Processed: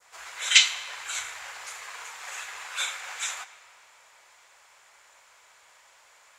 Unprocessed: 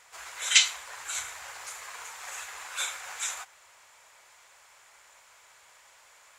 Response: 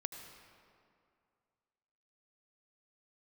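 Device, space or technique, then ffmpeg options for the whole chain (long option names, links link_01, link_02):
filtered reverb send: -filter_complex "[0:a]asplit=2[link_01][link_02];[link_02]highpass=170,lowpass=8900[link_03];[1:a]atrim=start_sample=2205[link_04];[link_03][link_04]afir=irnorm=-1:irlink=0,volume=-4.5dB[link_05];[link_01][link_05]amix=inputs=2:normalize=0,adynamicequalizer=threshold=0.00794:dfrequency=2700:dqfactor=0.72:tfrequency=2700:tqfactor=0.72:attack=5:release=100:ratio=0.375:range=2:mode=boostabove:tftype=bell,volume=-3dB"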